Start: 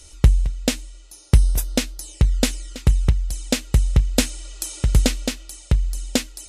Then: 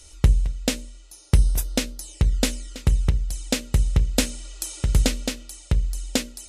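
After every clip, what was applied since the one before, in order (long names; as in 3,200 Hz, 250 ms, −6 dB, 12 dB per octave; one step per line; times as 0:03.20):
mains-hum notches 60/120/180/240/300/360/420/480/540/600 Hz
level −2 dB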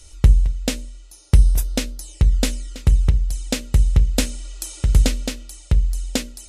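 low-shelf EQ 95 Hz +6.5 dB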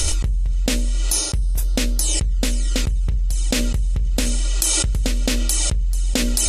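envelope flattener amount 100%
level −11.5 dB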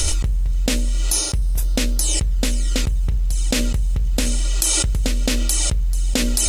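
mu-law and A-law mismatch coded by mu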